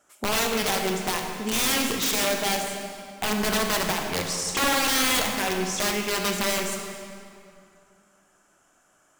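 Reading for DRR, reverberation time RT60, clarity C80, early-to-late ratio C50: 2.5 dB, 2.5 s, 4.5 dB, 3.5 dB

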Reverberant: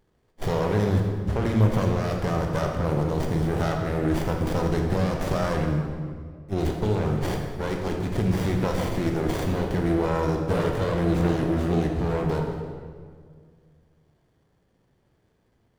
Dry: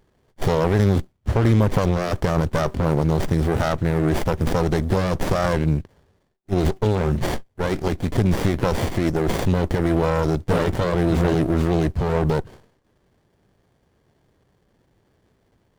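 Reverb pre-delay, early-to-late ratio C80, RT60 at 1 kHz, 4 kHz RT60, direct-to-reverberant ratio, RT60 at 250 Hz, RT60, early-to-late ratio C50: 16 ms, 5.0 dB, 1.8 s, 1.3 s, 1.5 dB, 2.4 s, 1.9 s, 3.5 dB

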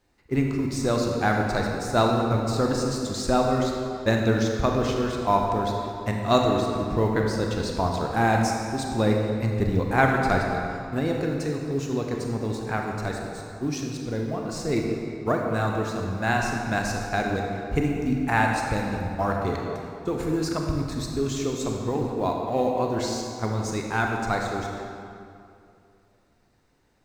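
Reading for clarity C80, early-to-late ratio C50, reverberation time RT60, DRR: 2.5 dB, 1.5 dB, 2.6 s, 0.5 dB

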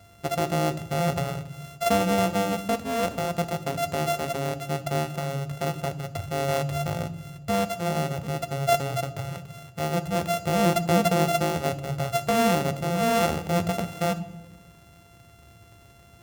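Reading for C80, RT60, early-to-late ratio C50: 18.0 dB, 1.2 s, 15.5 dB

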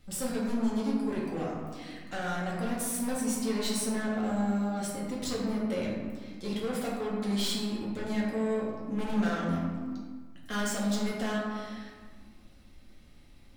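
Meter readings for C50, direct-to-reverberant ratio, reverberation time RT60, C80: 0.5 dB, -5.5 dB, 1.6 s, 2.5 dB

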